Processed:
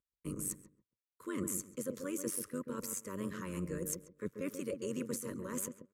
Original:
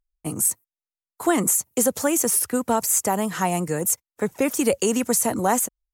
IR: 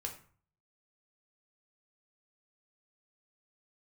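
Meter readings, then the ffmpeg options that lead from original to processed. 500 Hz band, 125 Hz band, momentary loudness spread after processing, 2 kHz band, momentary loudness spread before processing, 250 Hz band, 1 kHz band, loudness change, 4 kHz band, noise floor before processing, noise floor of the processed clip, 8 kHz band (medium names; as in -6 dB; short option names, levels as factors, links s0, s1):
-17.0 dB, -12.0 dB, 5 LU, -18.5 dB, 5 LU, -15.0 dB, -26.0 dB, -18.0 dB, -19.5 dB, under -85 dBFS, under -85 dBFS, -19.5 dB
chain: -filter_complex "[0:a]highpass=87,highshelf=f=3100:g=-8.5,areverse,acompressor=threshold=0.0282:ratio=6,areverse,tremolo=f=94:d=0.75,asuperstop=centerf=760:order=8:qfactor=1.8,asplit=2[s0][s1];[s1]adelay=136,lowpass=f=860:p=1,volume=0.501,asplit=2[s2][s3];[s3]adelay=136,lowpass=f=860:p=1,volume=0.25,asplit=2[s4][s5];[s5]adelay=136,lowpass=f=860:p=1,volume=0.25[s6];[s2][s4][s6]amix=inputs=3:normalize=0[s7];[s0][s7]amix=inputs=2:normalize=0,volume=0.794"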